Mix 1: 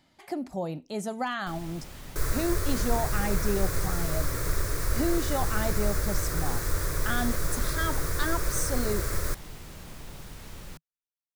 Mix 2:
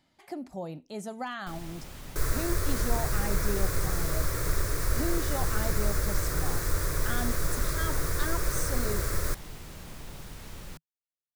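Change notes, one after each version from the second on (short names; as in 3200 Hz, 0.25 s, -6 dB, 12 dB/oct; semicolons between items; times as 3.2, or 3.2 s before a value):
speech -5.0 dB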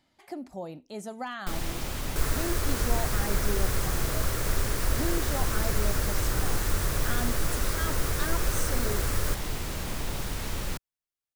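first sound +11.0 dB; master: add bell 160 Hz -4.5 dB 0.44 oct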